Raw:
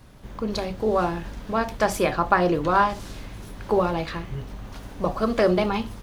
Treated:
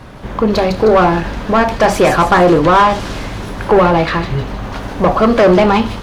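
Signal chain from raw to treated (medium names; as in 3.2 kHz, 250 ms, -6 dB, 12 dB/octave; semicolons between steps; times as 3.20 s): bass shelf 160 Hz +12 dB; overdrive pedal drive 24 dB, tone 1.5 kHz, clips at -3.5 dBFS; feedback echo behind a high-pass 155 ms, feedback 50%, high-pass 4.3 kHz, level -3.5 dB; trim +3.5 dB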